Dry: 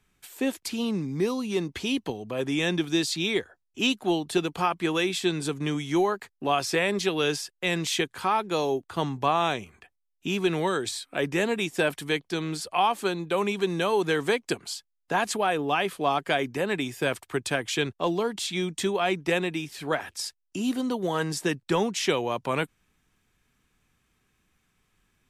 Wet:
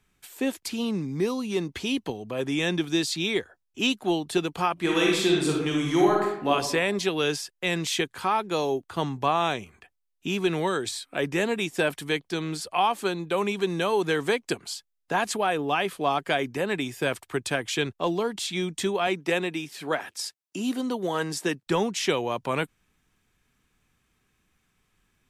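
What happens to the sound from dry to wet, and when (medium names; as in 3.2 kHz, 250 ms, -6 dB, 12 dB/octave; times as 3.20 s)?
4.73–6.51 s: reverb throw, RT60 0.85 s, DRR -2 dB
19.07–21.67 s: high-pass 170 Hz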